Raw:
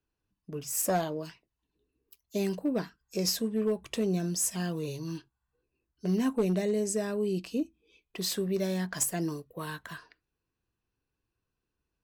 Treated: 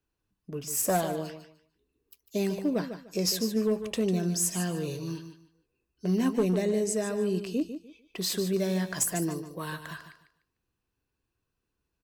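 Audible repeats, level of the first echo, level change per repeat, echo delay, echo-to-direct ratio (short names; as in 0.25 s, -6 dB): 2, -10.0 dB, -13.0 dB, 0.149 s, -10.0 dB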